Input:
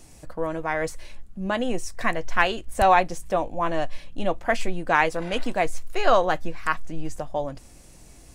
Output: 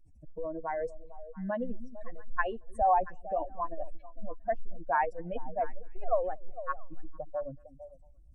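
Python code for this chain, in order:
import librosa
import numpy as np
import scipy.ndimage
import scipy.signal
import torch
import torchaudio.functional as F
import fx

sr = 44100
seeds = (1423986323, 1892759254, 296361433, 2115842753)

y = fx.spec_expand(x, sr, power=2.5)
y = fx.echo_stepped(y, sr, ms=227, hz=210.0, octaves=1.4, feedback_pct=70, wet_db=-10)
y = F.gain(torch.from_numpy(y), -7.0).numpy()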